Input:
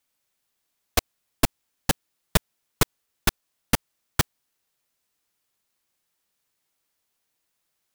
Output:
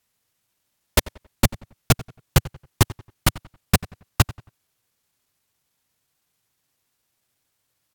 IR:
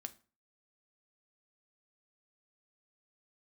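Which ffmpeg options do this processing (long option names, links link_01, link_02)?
-filter_complex "[0:a]equalizer=frequency=130:width=0.99:gain=9,alimiter=limit=-5dB:level=0:latency=1:release=38,asetrate=37084,aresample=44100,atempo=1.18921,asplit=2[link_01][link_02];[link_02]adelay=91,lowpass=frequency=3100:poles=1,volume=-18.5dB,asplit=2[link_03][link_04];[link_04]adelay=91,lowpass=frequency=3100:poles=1,volume=0.35,asplit=2[link_05][link_06];[link_06]adelay=91,lowpass=frequency=3100:poles=1,volume=0.35[link_07];[link_01][link_03][link_05][link_07]amix=inputs=4:normalize=0,volume=3dB"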